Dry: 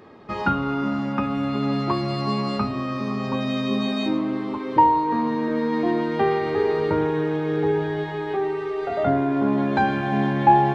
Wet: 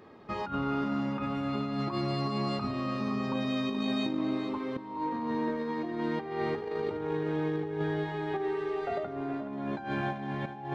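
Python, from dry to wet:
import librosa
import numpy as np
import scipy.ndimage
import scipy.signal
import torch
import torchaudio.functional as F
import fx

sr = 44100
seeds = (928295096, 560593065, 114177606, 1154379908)

y = fx.over_compress(x, sr, threshold_db=-24.0, ratio=-0.5)
y = y + 10.0 ** (-11.0 / 20.0) * np.pad(y, (int(425 * sr / 1000.0), 0))[:len(y)]
y = F.gain(torch.from_numpy(y), -8.0).numpy()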